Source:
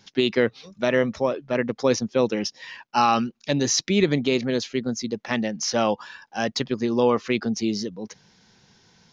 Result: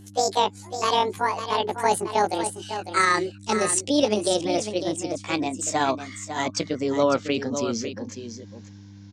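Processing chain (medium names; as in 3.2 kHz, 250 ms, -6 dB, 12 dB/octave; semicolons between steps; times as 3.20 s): pitch bend over the whole clip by +11.5 st ending unshifted; mains buzz 100 Hz, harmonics 3, -46 dBFS -3 dB/octave; delay 551 ms -9.5 dB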